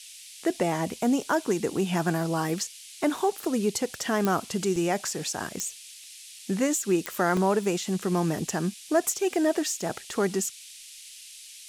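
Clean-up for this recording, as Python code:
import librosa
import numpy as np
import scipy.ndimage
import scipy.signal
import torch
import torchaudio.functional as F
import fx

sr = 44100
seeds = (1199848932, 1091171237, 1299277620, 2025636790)

y = fx.fix_declick_ar(x, sr, threshold=10.0)
y = fx.fix_interpolate(y, sr, at_s=(4.76, 6.04, 6.39, 7.37, 9.81), length_ms=2.0)
y = fx.noise_reduce(y, sr, print_start_s=5.94, print_end_s=6.44, reduce_db=26.0)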